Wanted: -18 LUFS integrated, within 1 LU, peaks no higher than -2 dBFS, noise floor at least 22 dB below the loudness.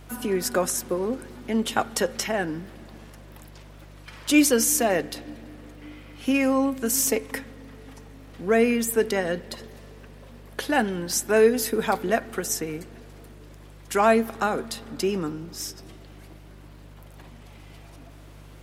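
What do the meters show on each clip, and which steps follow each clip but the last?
tick rate 35 per s; hum 50 Hz; highest harmonic 150 Hz; hum level -44 dBFS; loudness -24.5 LUFS; peak level -6.5 dBFS; loudness target -18.0 LUFS
-> de-click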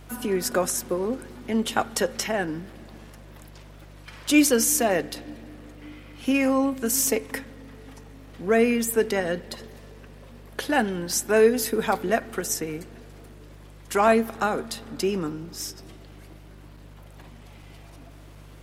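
tick rate 0.16 per s; hum 50 Hz; highest harmonic 150 Hz; hum level -45 dBFS
-> de-hum 50 Hz, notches 3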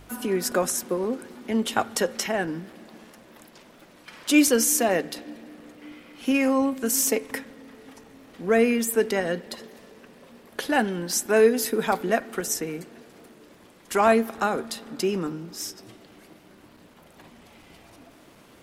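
hum not found; loudness -24.5 LUFS; peak level -6.5 dBFS; loudness target -18.0 LUFS
-> trim +6.5 dB; peak limiter -2 dBFS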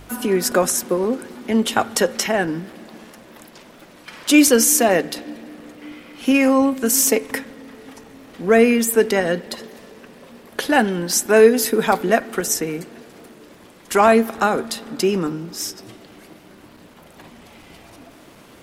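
loudness -18.0 LUFS; peak level -2.0 dBFS; noise floor -46 dBFS

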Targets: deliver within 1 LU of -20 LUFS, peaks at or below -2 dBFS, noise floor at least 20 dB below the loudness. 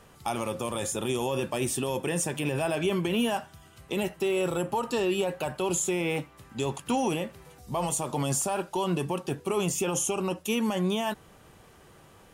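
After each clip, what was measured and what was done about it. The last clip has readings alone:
clipped samples 0.1%; clipping level -19.0 dBFS; loudness -29.0 LUFS; peak level -19.0 dBFS; loudness target -20.0 LUFS
-> clip repair -19 dBFS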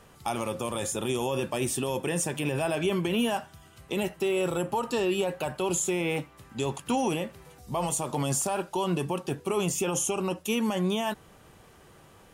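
clipped samples 0.0%; loudness -29.0 LUFS; peak level -14.0 dBFS; loudness target -20.0 LUFS
-> trim +9 dB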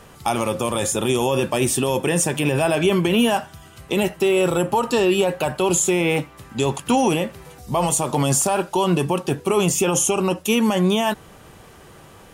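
loudness -20.0 LUFS; peak level -5.0 dBFS; noise floor -46 dBFS

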